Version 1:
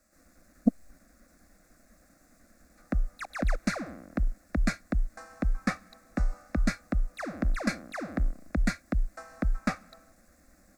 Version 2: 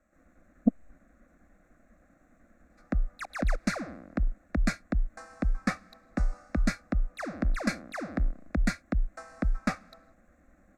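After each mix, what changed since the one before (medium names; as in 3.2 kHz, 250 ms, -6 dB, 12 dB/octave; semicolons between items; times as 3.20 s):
speech: add boxcar filter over 9 samples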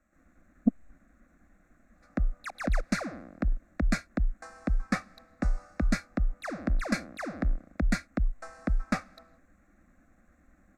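speech: add peaking EQ 550 Hz -5.5 dB 0.92 oct; background: entry -0.75 s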